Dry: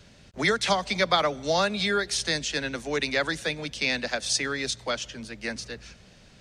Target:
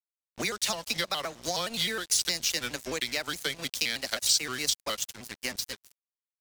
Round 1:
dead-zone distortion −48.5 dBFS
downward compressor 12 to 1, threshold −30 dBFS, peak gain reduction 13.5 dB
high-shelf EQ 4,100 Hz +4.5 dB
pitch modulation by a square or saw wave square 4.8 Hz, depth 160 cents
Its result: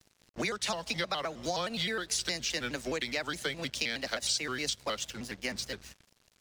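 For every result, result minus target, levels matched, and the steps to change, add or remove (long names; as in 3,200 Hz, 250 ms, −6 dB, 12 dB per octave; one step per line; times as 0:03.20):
dead-zone distortion: distortion −9 dB; 8,000 Hz band −3.0 dB
change: dead-zone distortion −38.5 dBFS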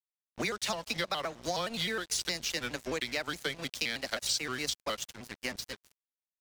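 8,000 Hz band −3.0 dB
change: high-shelf EQ 4,100 Hz +15 dB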